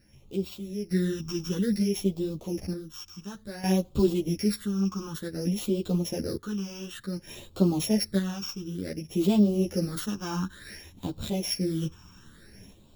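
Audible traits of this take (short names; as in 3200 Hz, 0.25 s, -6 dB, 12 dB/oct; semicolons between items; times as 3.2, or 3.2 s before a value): a buzz of ramps at a fixed pitch in blocks of 8 samples; phasing stages 8, 0.56 Hz, lowest notch 570–1800 Hz; random-step tremolo 1.1 Hz, depth 75%; a shimmering, thickened sound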